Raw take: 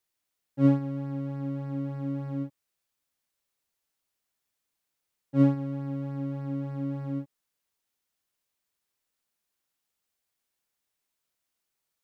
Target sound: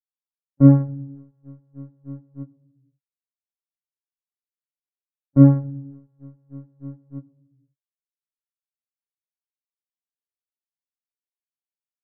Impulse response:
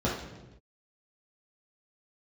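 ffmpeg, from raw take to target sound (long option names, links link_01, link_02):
-filter_complex "[0:a]agate=range=-41dB:threshold=-28dB:ratio=16:detection=peak,lowpass=frequency=1600:width=0.5412,lowpass=frequency=1600:width=1.3066,aemphasis=mode=reproduction:type=bsi,crystalizer=i=2:c=0,asplit=2[link_01][link_02];[1:a]atrim=start_sample=2205[link_03];[link_02][link_03]afir=irnorm=-1:irlink=0,volume=-27.5dB[link_04];[link_01][link_04]amix=inputs=2:normalize=0,volume=3.5dB"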